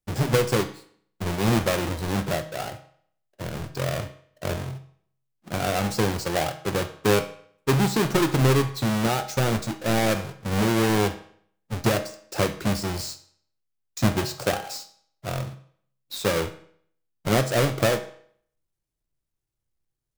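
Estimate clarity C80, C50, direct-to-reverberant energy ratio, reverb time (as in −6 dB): 16.0 dB, 12.5 dB, 8.0 dB, 0.60 s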